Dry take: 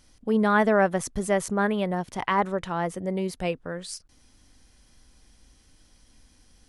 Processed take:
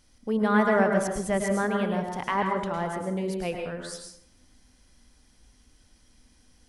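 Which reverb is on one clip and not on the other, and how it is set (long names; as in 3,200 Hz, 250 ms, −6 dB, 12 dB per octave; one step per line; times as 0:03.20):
dense smooth reverb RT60 0.72 s, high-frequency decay 0.65×, pre-delay 95 ms, DRR 2 dB
level −3.5 dB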